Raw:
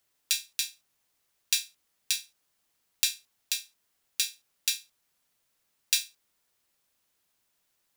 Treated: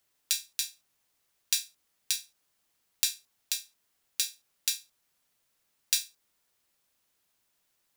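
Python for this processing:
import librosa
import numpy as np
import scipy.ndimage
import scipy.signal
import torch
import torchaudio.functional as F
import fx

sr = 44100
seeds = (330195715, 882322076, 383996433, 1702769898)

y = fx.dynamic_eq(x, sr, hz=2700.0, q=1.3, threshold_db=-46.0, ratio=4.0, max_db=-6)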